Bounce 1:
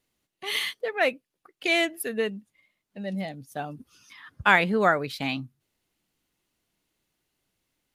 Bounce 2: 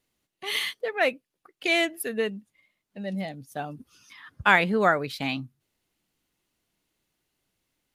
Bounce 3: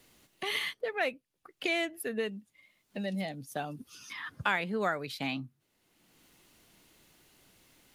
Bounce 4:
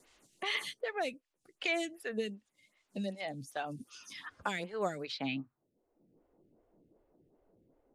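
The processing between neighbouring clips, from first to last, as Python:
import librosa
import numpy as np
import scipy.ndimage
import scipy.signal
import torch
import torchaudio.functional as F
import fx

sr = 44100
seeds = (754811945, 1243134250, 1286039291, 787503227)

y1 = x
y2 = fx.band_squash(y1, sr, depth_pct=70)
y2 = F.gain(torch.from_numpy(y2), -6.0).numpy()
y3 = fx.high_shelf(y2, sr, hz=7000.0, db=5.5)
y3 = fx.filter_sweep_lowpass(y3, sr, from_hz=7700.0, to_hz=520.0, start_s=5.03, end_s=5.73, q=1.6)
y3 = fx.stagger_phaser(y3, sr, hz=2.6)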